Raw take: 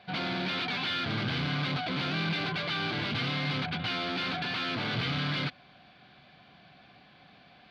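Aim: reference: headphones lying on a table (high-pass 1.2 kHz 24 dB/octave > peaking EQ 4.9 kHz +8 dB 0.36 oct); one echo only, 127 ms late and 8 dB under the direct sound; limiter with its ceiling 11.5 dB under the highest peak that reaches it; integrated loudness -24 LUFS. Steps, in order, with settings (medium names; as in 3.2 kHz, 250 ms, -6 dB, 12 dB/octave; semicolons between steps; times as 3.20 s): peak limiter -31.5 dBFS; high-pass 1.2 kHz 24 dB/octave; peaking EQ 4.9 kHz +8 dB 0.36 oct; delay 127 ms -8 dB; trim +14.5 dB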